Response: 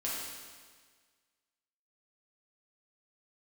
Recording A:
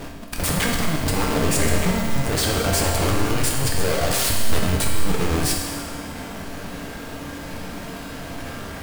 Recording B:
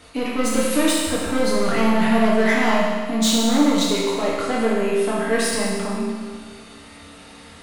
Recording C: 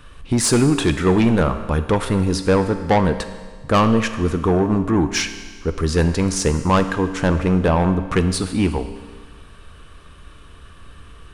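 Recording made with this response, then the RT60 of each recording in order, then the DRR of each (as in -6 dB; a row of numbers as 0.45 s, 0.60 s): B; 1.6 s, 1.6 s, 1.6 s; -1.0 dB, -7.0 dB, 8.5 dB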